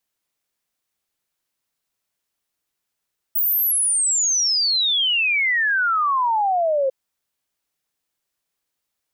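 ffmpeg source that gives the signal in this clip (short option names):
-f lavfi -i "aevalsrc='0.15*clip(min(t,3.55-t)/0.01,0,1)*sin(2*PI*16000*3.55/log(520/16000)*(exp(log(520/16000)*t/3.55)-1))':d=3.55:s=44100"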